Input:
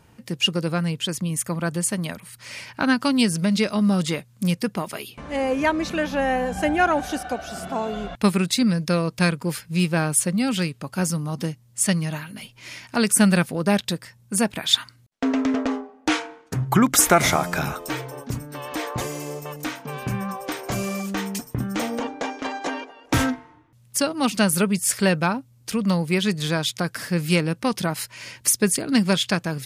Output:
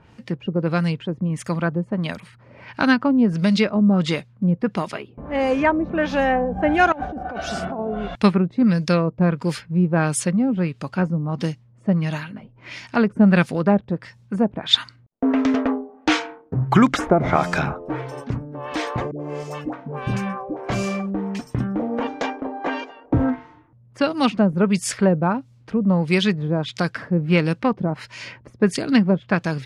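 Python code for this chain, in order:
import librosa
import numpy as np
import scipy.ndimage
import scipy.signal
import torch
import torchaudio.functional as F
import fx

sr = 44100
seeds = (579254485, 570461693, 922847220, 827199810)

y = fx.dispersion(x, sr, late='highs', ms=91.0, hz=620.0, at=(19.11, 20.57))
y = fx.filter_lfo_lowpass(y, sr, shape='sine', hz=1.5, low_hz=540.0, high_hz=6300.0, q=0.85)
y = fx.over_compress(y, sr, threshold_db=-31.0, ratio=-1.0, at=(6.92, 7.79))
y = F.gain(torch.from_numpy(y), 3.0).numpy()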